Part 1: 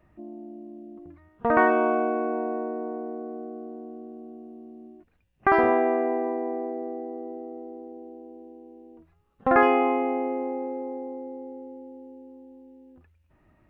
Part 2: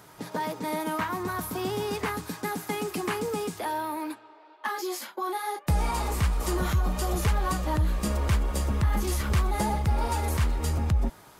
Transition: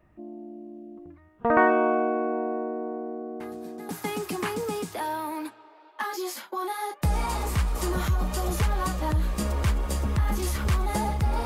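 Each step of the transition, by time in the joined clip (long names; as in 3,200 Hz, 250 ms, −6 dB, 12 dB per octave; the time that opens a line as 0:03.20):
part 1
0:03.40: mix in part 2 from 0:02.05 0.49 s −15.5 dB
0:03.89: continue with part 2 from 0:02.54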